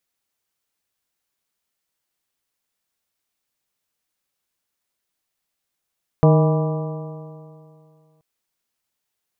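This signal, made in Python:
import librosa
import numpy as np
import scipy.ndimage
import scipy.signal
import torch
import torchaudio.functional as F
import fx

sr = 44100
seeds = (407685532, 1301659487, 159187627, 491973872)

y = fx.additive_stiff(sr, length_s=1.98, hz=154.0, level_db=-10.0, upper_db=(-11, -6.0, -8.5, -15.0, -15.5, -18), decay_s=2.38, stiffness=0.0036)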